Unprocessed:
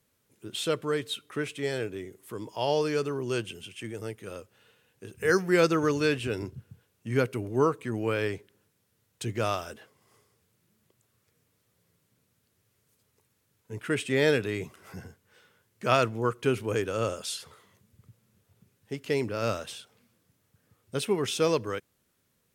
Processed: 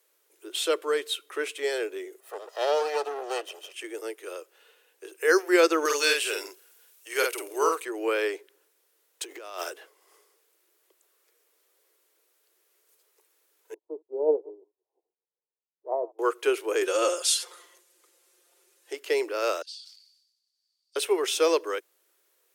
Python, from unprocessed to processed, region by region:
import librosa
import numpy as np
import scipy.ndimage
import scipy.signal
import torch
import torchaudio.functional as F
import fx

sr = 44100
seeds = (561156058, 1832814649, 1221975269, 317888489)

y = fx.chain(x, sr, fx.lower_of_two(delay_ms=1.6),
    fx.high_shelf(hz=5800.0, db=-7.0),
    fx.notch(hz=2200.0, q=11.0), at=(2.2, 3.74))
y = fx.chain(y, sr, fx.highpass(hz=730.0, slope=6),
    fx.high_shelf(hz=3600.0, db=10.5),
    fx.doubler(ms=49.0, db=-3), at=(5.85, 7.85))
y = fx.chain(y, sr, fx.law_mismatch(coded='A'),
    fx.over_compress(threshold_db=-40.0, ratio=-1.0), at=(9.23, 9.7))
y = fx.chain(y, sr, fx.reverse_delay(ms=108, wet_db=-11.5),
    fx.steep_lowpass(hz=1000.0, slope=96),
    fx.upward_expand(threshold_db=-45.0, expansion=2.5), at=(13.74, 16.19))
y = fx.chain(y, sr, fx.lowpass(hz=9000.0, slope=12),
    fx.high_shelf(hz=5600.0, db=11.0),
    fx.comb(ms=5.7, depth=0.8), at=(16.81, 18.93))
y = fx.chain(y, sr, fx.ladder_bandpass(hz=4700.0, resonance_pct=90),
    fx.sustainer(db_per_s=58.0), at=(19.62, 20.96))
y = scipy.signal.sosfilt(scipy.signal.butter(12, 330.0, 'highpass', fs=sr, output='sos'), y)
y = fx.high_shelf(y, sr, hz=11000.0, db=5.5)
y = y * librosa.db_to_amplitude(3.0)